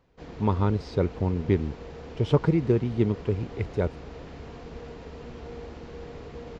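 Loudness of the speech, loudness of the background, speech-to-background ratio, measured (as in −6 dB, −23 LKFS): −27.0 LKFS, −42.0 LKFS, 15.0 dB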